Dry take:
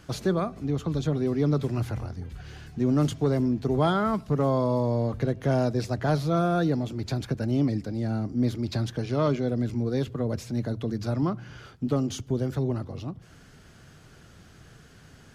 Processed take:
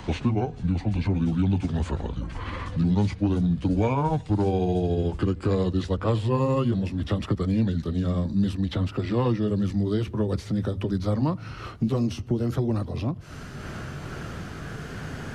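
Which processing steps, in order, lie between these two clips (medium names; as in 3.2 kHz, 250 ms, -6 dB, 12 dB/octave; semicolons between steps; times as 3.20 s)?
pitch bend over the whole clip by -8 st ending unshifted; three bands compressed up and down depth 70%; trim +2.5 dB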